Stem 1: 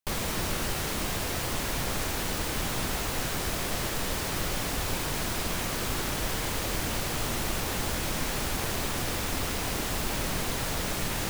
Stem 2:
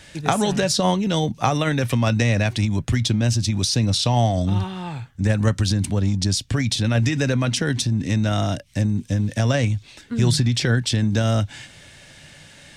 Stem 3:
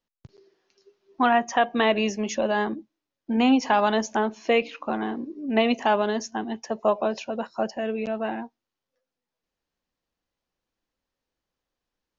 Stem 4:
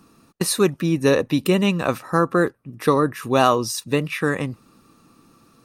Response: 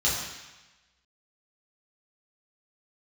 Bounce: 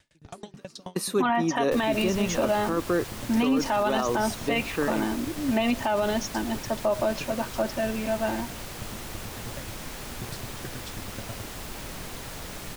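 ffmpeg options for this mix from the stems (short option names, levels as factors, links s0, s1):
-filter_complex "[0:a]adelay=1650,volume=0.422[s0];[1:a]aeval=exprs='val(0)*pow(10,-34*if(lt(mod(9.3*n/s,1),2*abs(9.3)/1000),1-mod(9.3*n/s,1)/(2*abs(9.3)/1000),(mod(9.3*n/s,1)-2*abs(9.3)/1000)/(1-2*abs(9.3)/1000))/20)':c=same,volume=0.188[s1];[2:a]aecho=1:1:3.3:0.67,volume=0.944[s2];[3:a]highpass=270,lowshelf=f=500:g=9.5,adelay=550,volume=0.335[s3];[s0][s1][s2][s3]amix=inputs=4:normalize=0,alimiter=limit=0.168:level=0:latency=1:release=35"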